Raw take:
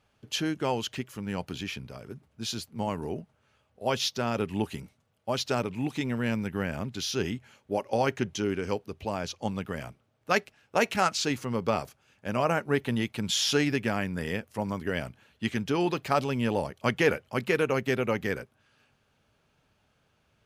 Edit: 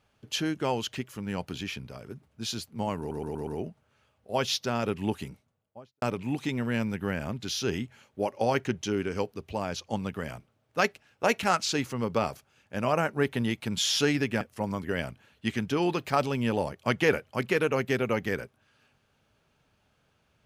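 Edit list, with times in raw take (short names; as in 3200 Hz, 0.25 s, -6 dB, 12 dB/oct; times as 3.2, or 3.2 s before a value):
2.99 stutter 0.12 s, 5 plays
4.66–5.54 studio fade out
13.93–14.39 cut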